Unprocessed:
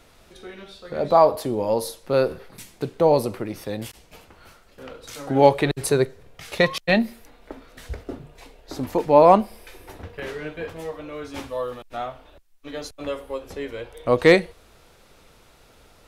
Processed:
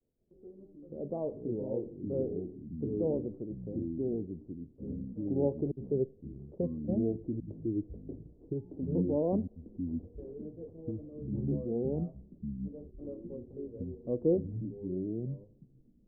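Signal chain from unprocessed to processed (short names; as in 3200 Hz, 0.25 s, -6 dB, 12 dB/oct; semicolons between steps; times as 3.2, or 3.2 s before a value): inverse Chebyshev low-pass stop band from 2600 Hz, stop band 80 dB; low shelf 82 Hz -9 dB; expander -51 dBFS; echoes that change speed 0.201 s, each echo -4 st, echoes 3; gain -8.5 dB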